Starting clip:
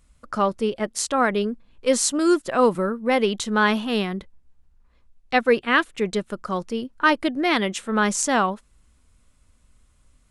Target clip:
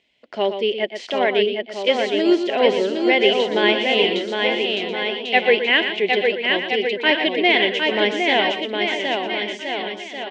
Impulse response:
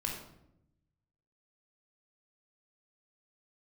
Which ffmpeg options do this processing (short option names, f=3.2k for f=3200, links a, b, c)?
-filter_complex "[0:a]asplit=2[a][b];[b]aecho=0:1:760|1368|1854|2244|2555:0.631|0.398|0.251|0.158|0.1[c];[a][c]amix=inputs=2:normalize=0,aexciter=amount=1.7:drive=8.5:freq=2.1k,equalizer=f=1.2k:w=6.1:g=-13,acrossover=split=2700[d][e];[e]acompressor=threshold=-19dB:ratio=4:attack=1:release=60[f];[d][f]amix=inputs=2:normalize=0,highpass=280,equalizer=f=390:t=q:w=4:g=9,equalizer=f=670:t=q:w=4:g=8,equalizer=f=1.3k:t=q:w=4:g=-9,equalizer=f=2k:t=q:w=4:g=6,equalizer=f=3.1k:t=q:w=4:g=8,lowpass=f=3.8k:w=0.5412,lowpass=f=3.8k:w=1.3066,asplit=2[g][h];[h]aecho=0:1:119:0.355[i];[g][i]amix=inputs=2:normalize=0,volume=-2dB"